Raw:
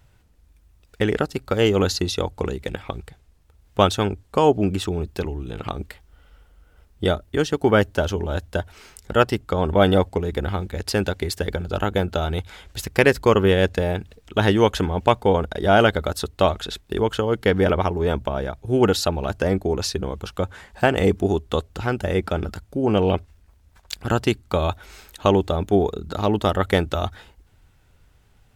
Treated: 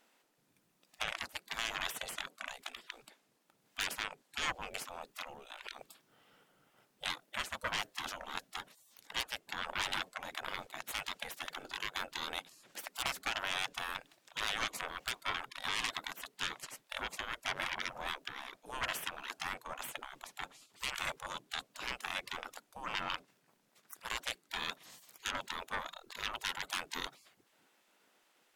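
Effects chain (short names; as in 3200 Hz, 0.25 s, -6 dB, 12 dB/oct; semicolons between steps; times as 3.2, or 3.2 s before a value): added harmonics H 6 -24 dB, 8 -17 dB, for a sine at -1.5 dBFS; spectral gate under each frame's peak -20 dB weak; limiter -18 dBFS, peak gain reduction 7.5 dB; gain -4 dB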